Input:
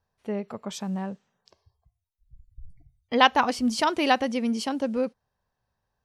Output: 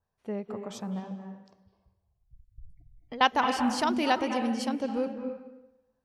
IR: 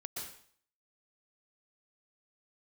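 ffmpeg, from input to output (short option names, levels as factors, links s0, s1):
-filter_complex "[0:a]asettb=1/sr,asplit=3[s0][s1][s2];[s0]atrim=end=0.994[s3];[s1]atrim=start=0.99:end=3.21,asetpts=PTS-STARTPTS,afade=t=in:d=0.004:c=qsin,afade=t=out:st=2.216:d=0.004:c=qsin,acompressor=threshold=0.02:ratio=8[s4];[s2]atrim=start=3.206[s5];[s3][s4]acrossfade=d=0.004:c1=hsin:c2=qsin[s6];[s6][s5]acrossfade=d=0.004:c1=qsin:c2=hsin,asplit=2[s7][s8];[1:a]atrim=start_sample=2205,asetrate=25578,aresample=44100,lowpass=2200[s9];[s8][s9]afir=irnorm=-1:irlink=0,volume=0.562[s10];[s7][s10]amix=inputs=2:normalize=0,adynamicequalizer=threshold=0.0158:dfrequency=2800:dqfactor=0.7:tfrequency=2800:tqfactor=0.7:attack=5:release=100:ratio=0.375:range=2:mode=boostabove:tftype=highshelf,volume=0.447"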